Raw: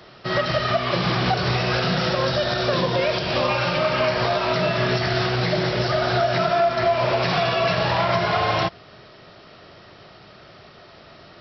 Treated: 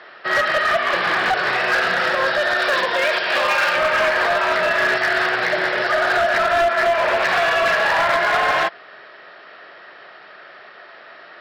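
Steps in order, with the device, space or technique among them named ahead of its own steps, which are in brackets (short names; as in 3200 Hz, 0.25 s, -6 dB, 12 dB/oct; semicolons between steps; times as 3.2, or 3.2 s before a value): megaphone (BPF 500–3100 Hz; bell 1700 Hz +10 dB 0.48 oct; hard clip -17 dBFS, distortion -15 dB); 2.59–3.75 tilt +1.5 dB/oct; gain +4 dB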